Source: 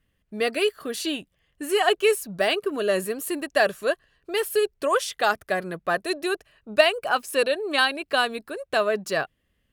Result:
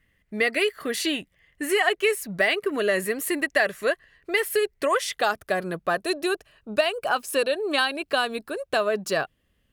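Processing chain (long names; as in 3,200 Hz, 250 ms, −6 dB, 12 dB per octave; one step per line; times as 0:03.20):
parametric band 2,000 Hz +12.5 dB 0.35 octaves, from 0:05.12 −2.5 dB
downward compressor 2.5 to 1, threshold −23 dBFS, peak gain reduction 8.5 dB
level +2.5 dB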